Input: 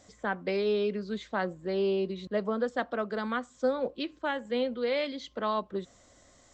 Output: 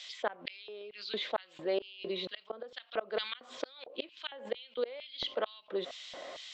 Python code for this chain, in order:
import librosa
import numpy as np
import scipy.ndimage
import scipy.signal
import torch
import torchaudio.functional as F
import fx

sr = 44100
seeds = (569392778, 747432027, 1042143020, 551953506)

y = fx.high_shelf_res(x, sr, hz=2200.0, db=7.5, q=1.5)
y = fx.gate_flip(y, sr, shuts_db=-21.0, range_db=-33)
y = fx.filter_lfo_highpass(y, sr, shape='square', hz=2.2, low_hz=550.0, high_hz=3100.0, q=1.4)
y = fx.air_absorb(y, sr, metres=370.0)
y = fx.env_flatten(y, sr, amount_pct=50)
y = y * librosa.db_to_amplitude(1.5)